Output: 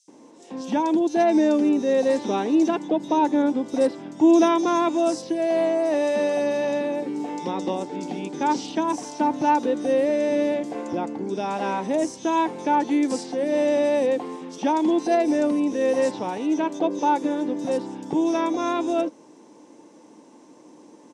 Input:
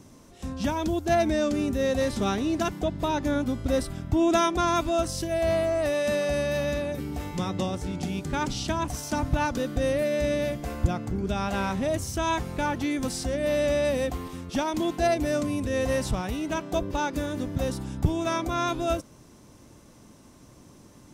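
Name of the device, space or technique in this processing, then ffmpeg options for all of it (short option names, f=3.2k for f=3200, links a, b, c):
television speaker: -filter_complex "[0:a]highpass=f=210:w=0.5412,highpass=f=210:w=1.3066,equalizer=f=310:t=q:w=4:g=9,equalizer=f=480:t=q:w=4:g=8,equalizer=f=890:t=q:w=4:g=10,equalizer=f=1.3k:t=q:w=4:g=-6,lowpass=f=8.4k:w=0.5412,lowpass=f=8.4k:w=1.3066,acrossover=split=4200[a][b];[a]adelay=80[c];[c][b]amix=inputs=2:normalize=0"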